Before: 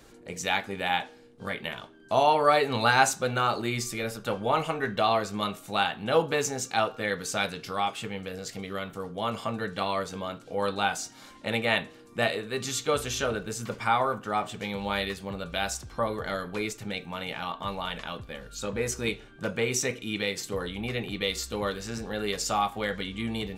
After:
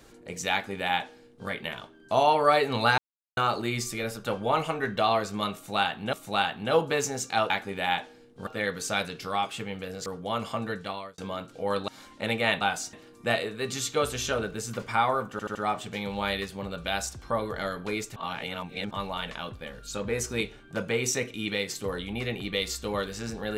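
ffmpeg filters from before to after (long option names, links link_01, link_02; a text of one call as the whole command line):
ffmpeg -i in.wav -filter_complex "[0:a]asplit=16[link_01][link_02][link_03][link_04][link_05][link_06][link_07][link_08][link_09][link_10][link_11][link_12][link_13][link_14][link_15][link_16];[link_01]atrim=end=2.98,asetpts=PTS-STARTPTS,afade=type=out:start_time=2.976:duration=0.004:curve=hsin[link_17];[link_02]atrim=start=2.98:end=3.37,asetpts=PTS-STARTPTS,volume=0[link_18];[link_03]atrim=start=3.37:end=6.132,asetpts=PTS-STARTPTS,afade=type=in:duration=0.004:curve=hsin[link_19];[link_04]atrim=start=5.538:end=6.912[link_20];[link_05]atrim=start=0.518:end=1.492[link_21];[link_06]atrim=start=6.908:end=8.502[link_22];[link_07]atrim=start=8.978:end=10.1,asetpts=PTS-STARTPTS,afade=type=out:start_time=0.632:duration=0.49[link_23];[link_08]atrim=start=10.1:end=10.802,asetpts=PTS-STARTPTS,afade=type=in:duration=0.004:curve=hsin[link_24];[link_09]atrim=start=11.118:end=11.852[link_25];[link_10]atrim=start=10.798:end=11.122[link_26];[link_11]atrim=start=11.848:end=14.312[link_27];[link_12]atrim=start=14.228:end=14.312[link_28];[link_13]atrim=start=14.228:end=14.312[link_29];[link_14]atrim=start=14.228:end=16.842[link_30];[link_15]atrim=start=16.838:end=17.592,asetpts=PTS-STARTPTS,areverse[link_31];[link_16]atrim=start=17.588[link_32];[link_17][link_18][link_19]concat=n=3:v=0:a=1[link_33];[link_33][link_20]acrossfade=duration=0.004:curve1=hsin:curve2=hsin[link_34];[link_34][link_21]acrossfade=duration=0.004:curve1=hsin:curve2=hsin[link_35];[link_35][link_22]acrossfade=duration=0.004:curve1=hsin:curve2=hsin[link_36];[link_23][link_24]concat=n=2:v=0:a=1[link_37];[link_36][link_37]acrossfade=duration=0.004:curve1=hsin:curve2=hsin[link_38];[link_38][link_25]acrossfade=duration=0.004:curve1=hsin:curve2=hsin[link_39];[link_39][link_26]acrossfade=duration=0.004:curve1=hsin:curve2=hsin[link_40];[link_40][link_27]acrossfade=duration=0.004:curve1=hsin:curve2=hsin[link_41];[link_41][link_28]acrossfade=duration=0.004:curve1=hsin:curve2=hsin[link_42];[link_42][link_29]acrossfade=duration=0.004:curve1=hsin:curve2=hsin[link_43];[link_43][link_30]acrossfade=duration=0.004:curve1=hsin:curve2=hsin[link_44];[link_44][link_31]acrossfade=duration=0.004:curve1=hsin:curve2=hsin[link_45];[link_45][link_32]acrossfade=duration=0.004:curve1=hsin:curve2=hsin" out.wav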